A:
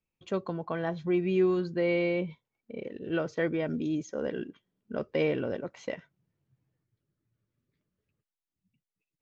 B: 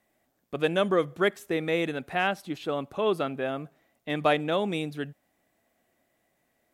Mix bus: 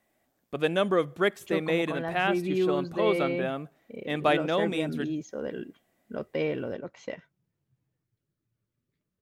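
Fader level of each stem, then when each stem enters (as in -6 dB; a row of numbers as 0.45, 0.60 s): -1.5, -0.5 dB; 1.20, 0.00 s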